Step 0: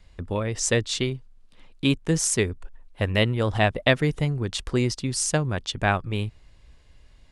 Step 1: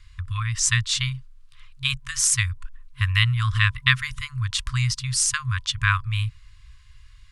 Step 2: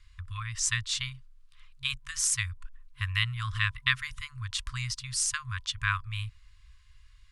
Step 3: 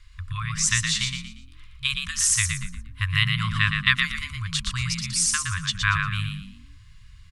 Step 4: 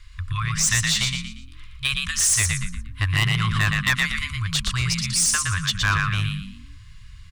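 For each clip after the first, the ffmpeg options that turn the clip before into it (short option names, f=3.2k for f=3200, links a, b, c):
-af "afftfilt=real='re*(1-between(b*sr/4096,130,1000))':imag='im*(1-between(b*sr/4096,130,1000))':win_size=4096:overlap=0.75,volume=4.5dB"
-af "equalizer=f=160:t=o:w=1:g=-9.5,volume=-7dB"
-filter_complex "[0:a]asplit=5[a][b][c][d][e];[b]adelay=117,afreqshift=44,volume=-5dB[f];[c]adelay=234,afreqshift=88,volume=-14.9dB[g];[d]adelay=351,afreqshift=132,volume=-24.8dB[h];[e]adelay=468,afreqshift=176,volume=-34.7dB[i];[a][f][g][h][i]amix=inputs=5:normalize=0,volume=6dB"
-af "asoftclip=type=tanh:threshold=-18.5dB,volume=5dB"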